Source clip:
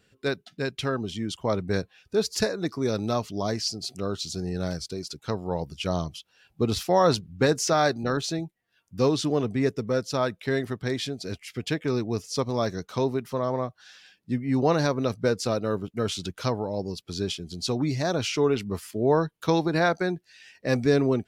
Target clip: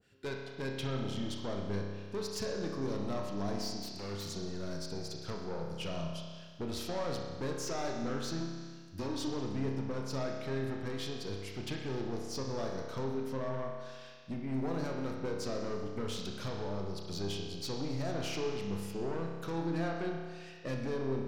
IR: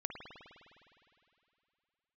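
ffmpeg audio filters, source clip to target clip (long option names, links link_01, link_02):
-filter_complex "[0:a]asettb=1/sr,asplit=3[link_01][link_02][link_03];[link_01]atrim=end=8.404[link_04];[link_02]atrim=start=8.4:end=9.27,asetpts=PTS-STARTPTS,afade=type=in:duration=0.004:curve=qsin,afade=type=out:start_time=0.866:duration=0.004:curve=qsin,aecho=1:1:3.2:1,atrim=end_sample=38367[link_05];[link_03]atrim=start=9.266[link_06];[link_04][link_05]acrossfade=duration=0.004:curve1=hsin:curve2=qsin[link_07];[link_07][link_06]acrossfade=duration=0.004:curve1=qsin:curve2=hsin,acompressor=threshold=-26dB:ratio=6,asettb=1/sr,asplit=3[link_08][link_09][link_10];[link_08]atrim=end=14.534[link_11];[link_09]atrim=start=14.53:end=15.17,asetpts=PTS-STARTPTS,afade=type=in:duration=0.004:curve=qsin,afade=type=out:start_time=0.636:duration=0.004:curve=qsin,aeval=exprs='sgn(val(0))*max(abs(val(0))-0.00188,0)':channel_layout=same[link_12];[link_10]atrim=start=15.166[link_13];[link_11][link_12]acrossfade=duration=0.004:curve1=hsin:curve2=qsin[link_14];[link_14][link_13]acrossfade=duration=0.004:curve1=qsin:curve2=hsin,aeval=exprs='(tanh(28.2*val(0)+0.25)-tanh(0.25))/28.2':channel_layout=same,asettb=1/sr,asplit=3[link_15][link_16][link_17];[link_15]atrim=end=3.774[link_18];[link_16]atrim=start=3.77:end=4.29,asetpts=PTS-STARTPTS,afade=type=in:duration=0.004:curve=qsin,afade=type=out:start_time=0.516:duration=0.004:curve=qsin,aeval=exprs='0.02*(abs(mod(val(0)/0.02+3,4)-2)-1)':channel_layout=same[link_19];[link_17]atrim=start=4.286[link_20];[link_18][link_19]acrossfade=duration=0.004:curve1=hsin:curve2=qsin[link_21];[link_21][link_20]acrossfade=duration=0.004:curve1=qsin:curve2=hsin[link_22];[1:a]atrim=start_sample=2205,asetrate=74970,aresample=44100[link_23];[link_22][link_23]afir=irnorm=-1:irlink=0,adynamicequalizer=threshold=0.00251:dfrequency=1500:dqfactor=0.7:tfrequency=1500:tqfactor=0.7:attack=5:release=100:ratio=0.375:range=1.5:mode=cutabove:tftype=highshelf,volume=2.5dB"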